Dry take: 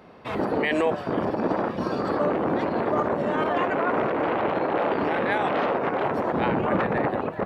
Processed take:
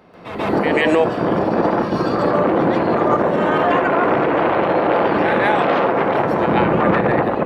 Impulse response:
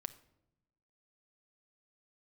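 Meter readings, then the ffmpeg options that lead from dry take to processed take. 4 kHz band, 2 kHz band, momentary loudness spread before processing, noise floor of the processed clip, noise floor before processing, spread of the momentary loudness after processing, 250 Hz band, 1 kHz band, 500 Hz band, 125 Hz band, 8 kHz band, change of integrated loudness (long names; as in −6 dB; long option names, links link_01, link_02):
+8.0 dB, +8.0 dB, 3 LU, −27 dBFS, −35 dBFS, 3 LU, +8.0 dB, +8.0 dB, +8.0 dB, +9.0 dB, can't be measured, +8.0 dB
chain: -filter_complex "[0:a]asplit=2[link_01][link_02];[1:a]atrim=start_sample=2205,adelay=139[link_03];[link_02][link_03]afir=irnorm=-1:irlink=0,volume=10dB[link_04];[link_01][link_04]amix=inputs=2:normalize=0"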